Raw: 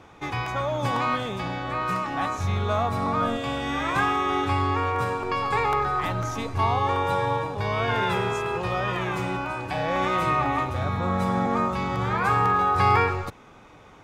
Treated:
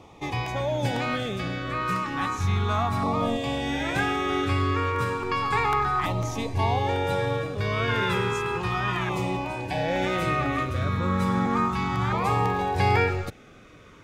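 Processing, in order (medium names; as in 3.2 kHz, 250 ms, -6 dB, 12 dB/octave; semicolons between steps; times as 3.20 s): LFO notch saw down 0.33 Hz 490–1600 Hz; trim +1.5 dB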